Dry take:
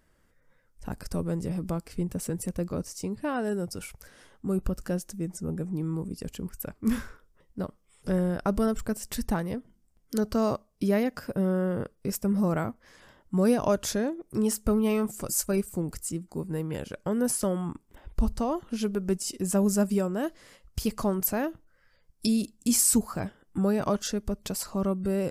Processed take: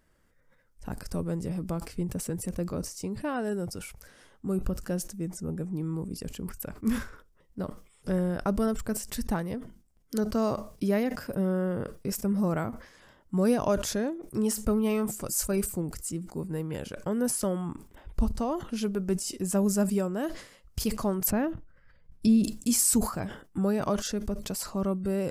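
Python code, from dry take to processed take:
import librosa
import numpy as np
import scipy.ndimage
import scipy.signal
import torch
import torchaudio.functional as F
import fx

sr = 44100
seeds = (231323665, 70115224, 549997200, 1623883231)

y = fx.bass_treble(x, sr, bass_db=9, treble_db=-11, at=(21.3, 22.44))
y = fx.sustainer(y, sr, db_per_s=110.0)
y = F.gain(torch.from_numpy(y), -1.5).numpy()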